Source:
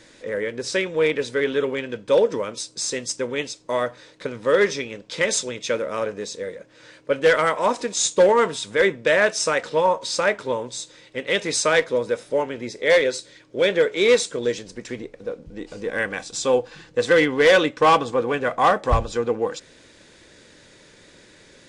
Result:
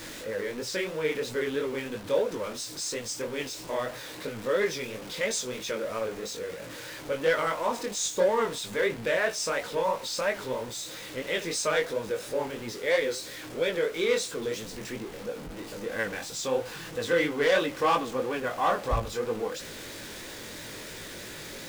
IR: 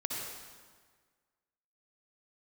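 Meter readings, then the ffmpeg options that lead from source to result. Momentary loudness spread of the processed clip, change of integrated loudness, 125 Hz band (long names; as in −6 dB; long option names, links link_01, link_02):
13 LU, −8.5 dB, −6.5 dB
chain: -af "aeval=exprs='val(0)+0.5*0.0473*sgn(val(0))':channel_layout=same,flanger=delay=17.5:depth=6.2:speed=3,volume=-6.5dB"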